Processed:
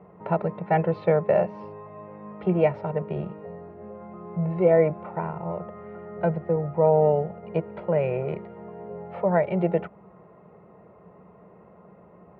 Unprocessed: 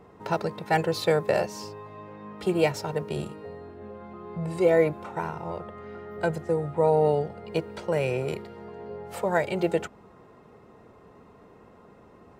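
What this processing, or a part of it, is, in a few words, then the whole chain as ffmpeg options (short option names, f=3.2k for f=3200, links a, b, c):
bass cabinet: -filter_complex "[0:a]highpass=64,equalizer=f=96:t=q:w=4:g=-4,equalizer=f=180:t=q:w=4:g=10,equalizer=f=260:t=q:w=4:g=-9,equalizer=f=610:t=q:w=4:g=6,equalizer=f=1.6k:t=q:w=4:g=-6,lowpass=f=2.2k:w=0.5412,lowpass=f=2.2k:w=1.3066,asettb=1/sr,asplit=3[a][b][c];[a]atrim=end=6.564[d];[b]atrim=start=6.56:end=7.43,asetpts=PTS-STARTPTS,afade=t=in:d=0.004:c=qsin,afade=t=out:st=0.866:d=0.004:c=qsin,agate=range=-33dB:threshold=-35dB:ratio=3:detection=peak[e];[c]atrim=start=7.426[f];[d][e]acrossfade=d=0.004:c1=hsin:c2=qsin[g];[g][f]acrossfade=d=0.004:c1=qsin:c2=hsin"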